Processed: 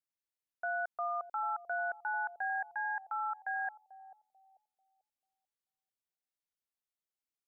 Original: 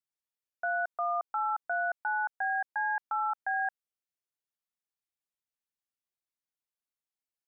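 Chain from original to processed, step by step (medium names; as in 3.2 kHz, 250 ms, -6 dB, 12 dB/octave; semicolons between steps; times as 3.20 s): 2.75–3.68 s: high-pass 510 Hz 6 dB/octave; bucket-brigade echo 440 ms, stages 2048, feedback 34%, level -11.5 dB; trim -4.5 dB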